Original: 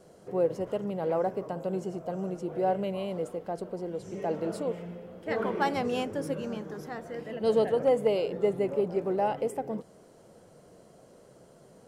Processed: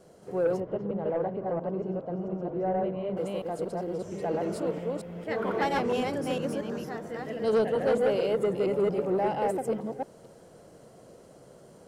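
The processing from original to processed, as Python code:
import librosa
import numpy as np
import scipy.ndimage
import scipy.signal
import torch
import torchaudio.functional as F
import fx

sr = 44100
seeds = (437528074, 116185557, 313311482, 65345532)

y = fx.reverse_delay(x, sr, ms=228, wet_db=-0.5)
y = 10.0 ** (-18.5 / 20.0) * np.tanh(y / 10.0 ** (-18.5 / 20.0))
y = fx.spacing_loss(y, sr, db_at_10k=35, at=(0.6, 3.17))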